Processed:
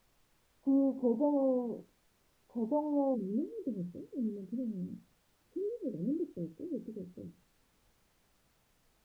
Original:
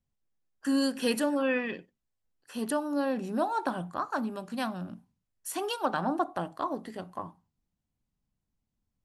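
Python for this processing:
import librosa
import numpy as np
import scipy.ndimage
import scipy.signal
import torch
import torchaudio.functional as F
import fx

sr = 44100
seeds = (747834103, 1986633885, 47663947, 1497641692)

y = fx.steep_lowpass(x, sr, hz=fx.steps((0.0, 980.0), (3.14, 510.0)), slope=96)
y = fx.dmg_noise_colour(y, sr, seeds[0], colour='pink', level_db=-70.0)
y = y * librosa.db_to_amplitude(-1.5)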